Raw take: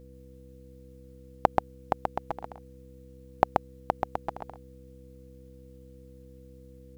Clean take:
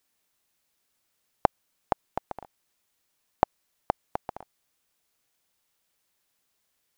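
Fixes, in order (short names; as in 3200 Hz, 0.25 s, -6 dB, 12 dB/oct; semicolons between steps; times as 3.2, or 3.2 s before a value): de-hum 65.3 Hz, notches 5; notch 490 Hz, Q 30; inverse comb 0.131 s -3 dB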